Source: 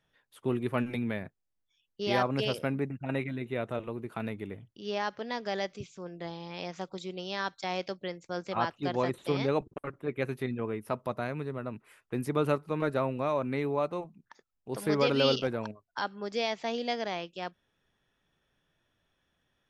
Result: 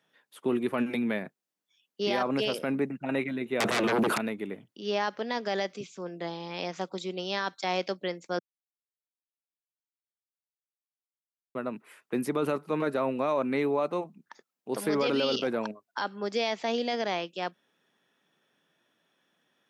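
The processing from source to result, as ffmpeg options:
-filter_complex "[0:a]asettb=1/sr,asplit=3[s0][s1][s2];[s0]atrim=end=3.604[s3];[s1]atrim=start=3.6:end=4.18,asetpts=PTS-STARTPTS,afade=t=in:d=0.004:c=qsin,afade=t=out:st=0.576:d=0.004:c=qsin,aeval=exprs='0.112*sin(PI/2*8.91*val(0)/0.112)':c=same[s4];[s2]atrim=start=4.176[s5];[s3][s4]acrossfade=d=0.004:c1=hsin:c2=qsin[s6];[s6][s5]acrossfade=d=0.004:c1=qsin:c2=hsin,asplit=3[s7][s8][s9];[s7]atrim=end=8.39,asetpts=PTS-STARTPTS,afade=t=out:st=8.386:d=0.004:c=hsin[s10];[s8]atrim=start=8.39:end=11.55,asetpts=PTS-STARTPTS,volume=0[s11];[s9]atrim=start=11.55,asetpts=PTS-STARTPTS,afade=t=in:d=0.004:c=hsin[s12];[s10][s11][s12]concat=n=3:v=0:a=1,highpass=f=180:w=0.5412,highpass=f=180:w=1.3066,alimiter=limit=0.0708:level=0:latency=1:release=20,volume=1.68"

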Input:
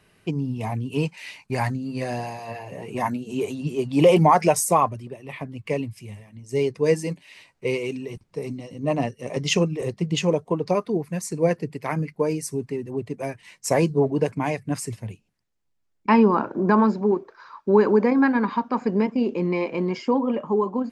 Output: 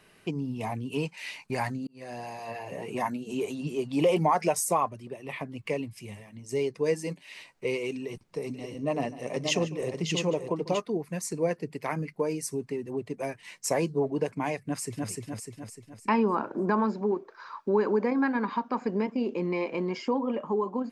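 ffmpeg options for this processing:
-filter_complex "[0:a]asplit=3[s0][s1][s2];[s0]afade=t=out:st=8.53:d=0.02[s3];[s1]aecho=1:1:147|579:0.126|0.447,afade=t=in:st=8.53:d=0.02,afade=t=out:st=10.8:d=0.02[s4];[s2]afade=t=in:st=10.8:d=0.02[s5];[s3][s4][s5]amix=inputs=3:normalize=0,asplit=2[s6][s7];[s7]afade=t=in:st=14.66:d=0.01,afade=t=out:st=15.09:d=0.01,aecho=0:1:300|600|900|1200|1500|1800:0.749894|0.337452|0.151854|0.0683341|0.0307503|0.0138377[s8];[s6][s8]amix=inputs=2:normalize=0,asplit=2[s9][s10];[s9]atrim=end=1.87,asetpts=PTS-STARTPTS,afade=t=out:st=1.866:d=0.004:c=hsin[s11];[s10]atrim=start=1.87,asetpts=PTS-STARTPTS,afade=t=in:d=0.88[s12];[s11][s12]concat=n=2:v=0:a=1,equalizer=f=67:w=0.61:g=-10,acompressor=threshold=0.0112:ratio=1.5,volume=1.26"

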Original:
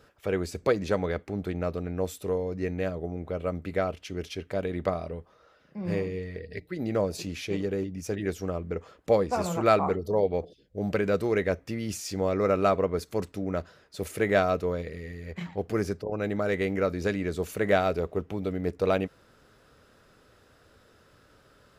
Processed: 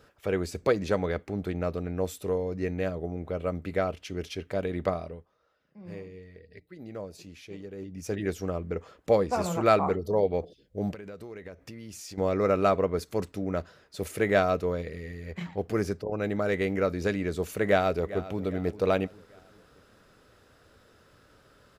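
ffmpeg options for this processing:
-filter_complex "[0:a]asettb=1/sr,asplit=3[s0][s1][s2];[s0]atrim=end=10.914[s3];[s1]atrim=start=10.91:end=12.18,asetpts=PTS-STARTPTS,afade=t=in:d=0.004:c=qsin,afade=t=out:st=1.266:d=0.004:c=qsin,acompressor=threshold=0.0112:ratio=8:attack=3.2:release=140:knee=1:detection=peak[s4];[s2]atrim=start=12.176[s5];[s3][s4]acrossfade=d=0.004:c1=hsin:c2=qsin[s6];[s6][s5]acrossfade=d=0.004:c1=qsin:c2=hsin,asplit=2[s7][s8];[s8]afade=t=in:st=17.63:d=0.01,afade=t=out:st=18.42:d=0.01,aecho=0:1:400|800|1200|1600:0.158489|0.0792447|0.0396223|0.0198112[s9];[s7][s9]amix=inputs=2:normalize=0,asplit=3[s10][s11][s12];[s10]atrim=end=5.3,asetpts=PTS-STARTPTS,afade=t=out:st=4.91:d=0.39:silence=0.251189[s13];[s11]atrim=start=5.3:end=7.75,asetpts=PTS-STARTPTS,volume=0.251[s14];[s12]atrim=start=7.75,asetpts=PTS-STARTPTS,afade=t=in:d=0.39:silence=0.251189[s15];[s13][s14][s15]concat=n=3:v=0:a=1"

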